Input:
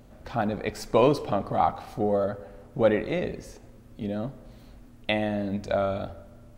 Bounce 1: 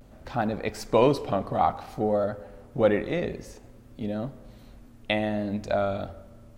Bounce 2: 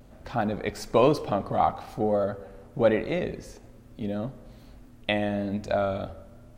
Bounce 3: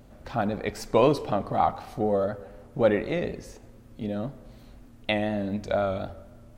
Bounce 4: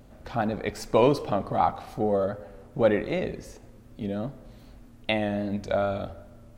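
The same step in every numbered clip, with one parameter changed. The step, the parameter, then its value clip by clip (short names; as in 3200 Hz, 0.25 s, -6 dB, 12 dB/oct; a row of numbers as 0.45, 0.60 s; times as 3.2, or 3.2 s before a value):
vibrato, rate: 0.58, 1.1, 4, 2.6 Hz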